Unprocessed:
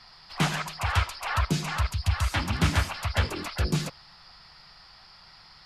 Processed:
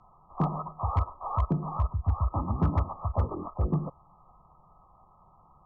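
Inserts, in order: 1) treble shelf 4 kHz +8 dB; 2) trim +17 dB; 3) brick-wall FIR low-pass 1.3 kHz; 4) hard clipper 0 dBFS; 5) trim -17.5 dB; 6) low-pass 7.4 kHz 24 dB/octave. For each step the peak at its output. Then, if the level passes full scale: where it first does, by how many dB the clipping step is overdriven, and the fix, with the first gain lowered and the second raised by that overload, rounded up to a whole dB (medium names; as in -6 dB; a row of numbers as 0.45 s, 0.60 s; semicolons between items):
-10.0 dBFS, +7.0 dBFS, +5.5 dBFS, 0.0 dBFS, -17.5 dBFS, -17.5 dBFS; step 2, 5.5 dB; step 2 +11 dB, step 5 -11.5 dB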